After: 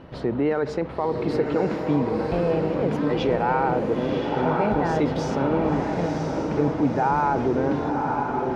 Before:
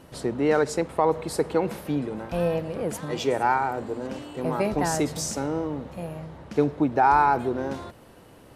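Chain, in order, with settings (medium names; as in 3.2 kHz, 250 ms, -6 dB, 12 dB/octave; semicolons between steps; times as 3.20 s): distance through air 280 m; peak limiter -20.5 dBFS, peak gain reduction 10 dB; echo that smears into a reverb 1017 ms, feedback 52%, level -3 dB; trim +6 dB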